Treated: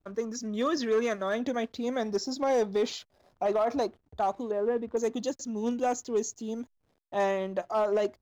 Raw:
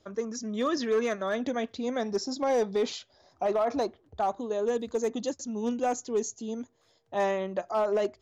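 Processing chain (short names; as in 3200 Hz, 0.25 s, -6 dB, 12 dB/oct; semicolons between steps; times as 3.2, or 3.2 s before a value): 4.51–4.97 LPF 2200 Hz 24 dB/oct; backlash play -54.5 dBFS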